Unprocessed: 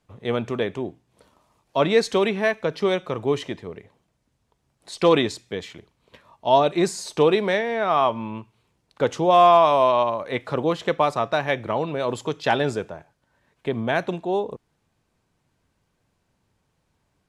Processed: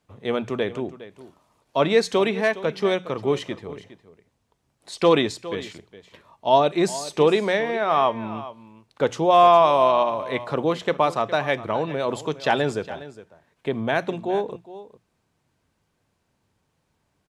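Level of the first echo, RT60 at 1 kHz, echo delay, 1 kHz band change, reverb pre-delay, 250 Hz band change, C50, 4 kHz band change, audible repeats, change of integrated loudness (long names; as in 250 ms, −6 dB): −16.0 dB, no reverb audible, 411 ms, 0.0 dB, no reverb audible, 0.0 dB, no reverb audible, 0.0 dB, 1, 0.0 dB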